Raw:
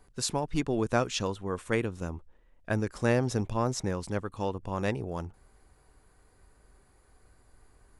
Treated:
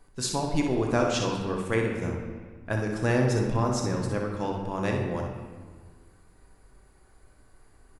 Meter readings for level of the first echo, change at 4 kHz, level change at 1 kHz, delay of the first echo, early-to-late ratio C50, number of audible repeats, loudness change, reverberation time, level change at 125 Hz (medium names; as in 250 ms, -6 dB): -7.0 dB, +2.0 dB, +3.0 dB, 62 ms, 2.0 dB, 1, +3.0 dB, 1.5 s, +4.0 dB